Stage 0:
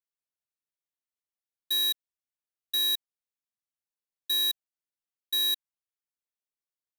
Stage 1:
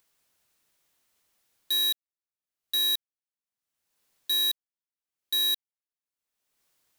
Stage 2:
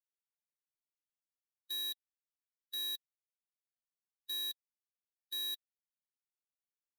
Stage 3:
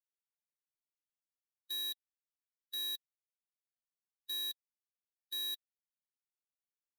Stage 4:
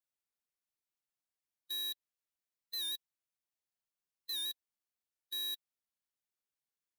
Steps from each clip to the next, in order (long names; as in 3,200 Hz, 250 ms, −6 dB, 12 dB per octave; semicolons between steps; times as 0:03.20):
leveller curve on the samples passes 5; upward compression, threshold −50 dBFS; level +1 dB
spectral dynamics exaggerated over time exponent 2; brickwall limiter −29 dBFS, peak gain reduction 4.5 dB; level −8.5 dB
no processing that can be heard
wow of a warped record 78 rpm, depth 100 cents